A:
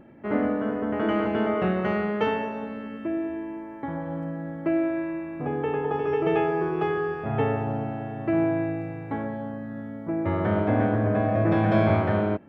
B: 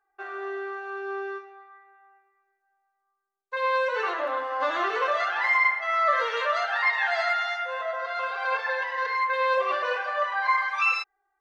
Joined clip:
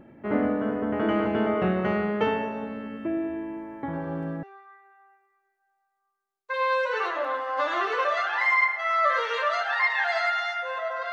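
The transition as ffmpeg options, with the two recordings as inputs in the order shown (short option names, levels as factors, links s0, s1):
-filter_complex "[1:a]asplit=2[s0][s1];[0:a]apad=whole_dur=11.12,atrim=end=11.12,atrim=end=4.432[s2];[s1]atrim=start=1.458:end=8.15[s3];[s0]atrim=start=0.96:end=1.46,asetpts=PTS-STARTPTS,volume=0.237,afade=t=in:d=0.004:c=hsin,afade=t=out:st=0.496:d=0.004:c=hsin,adelay=173313S[s4];[s2][s3]acrossfade=d=0.004:c1=hsin:c2=hsin[s5];[s5][s4]amix=inputs=2:normalize=0"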